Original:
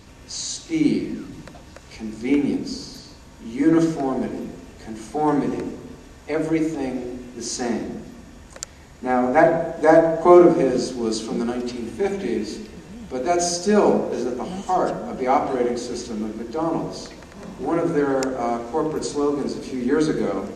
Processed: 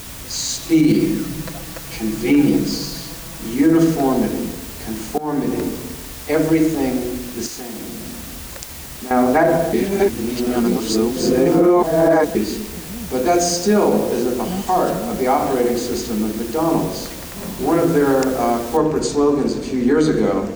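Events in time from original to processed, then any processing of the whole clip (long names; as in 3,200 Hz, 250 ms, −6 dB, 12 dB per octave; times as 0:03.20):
0:00.62–0:03.54: comb filter 6.1 ms, depth 99%
0:05.18–0:05.66: fade in, from −18.5 dB
0:07.46–0:09.11: downward compressor 16 to 1, threshold −34 dBFS
0:09.73–0:12.35: reverse
0:13.37–0:16.68: downward compressor 1.5 to 1, threshold −22 dBFS
0:18.77: noise floor change −41 dB −60 dB
whole clip: low-shelf EQ 220 Hz +3.5 dB; boost into a limiter +10.5 dB; level −5 dB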